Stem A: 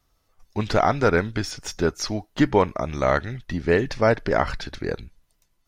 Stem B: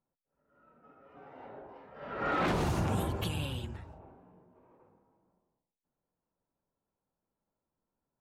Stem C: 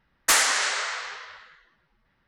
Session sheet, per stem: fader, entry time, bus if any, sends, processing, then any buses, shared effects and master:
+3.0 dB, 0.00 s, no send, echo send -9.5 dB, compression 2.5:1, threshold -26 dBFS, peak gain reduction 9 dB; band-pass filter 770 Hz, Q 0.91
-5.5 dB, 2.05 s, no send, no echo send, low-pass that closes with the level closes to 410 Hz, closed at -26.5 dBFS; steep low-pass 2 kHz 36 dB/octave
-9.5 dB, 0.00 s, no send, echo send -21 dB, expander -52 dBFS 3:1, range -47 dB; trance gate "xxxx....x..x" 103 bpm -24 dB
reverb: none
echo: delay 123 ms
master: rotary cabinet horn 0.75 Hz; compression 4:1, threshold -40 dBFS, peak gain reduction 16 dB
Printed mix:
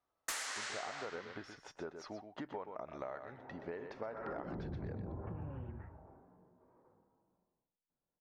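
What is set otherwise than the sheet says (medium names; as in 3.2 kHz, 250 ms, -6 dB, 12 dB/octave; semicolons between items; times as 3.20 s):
stem A +3.0 dB -> -9.0 dB; stem C: missing trance gate "xxxx....x..x" 103 bpm -24 dB; master: missing rotary cabinet horn 0.75 Hz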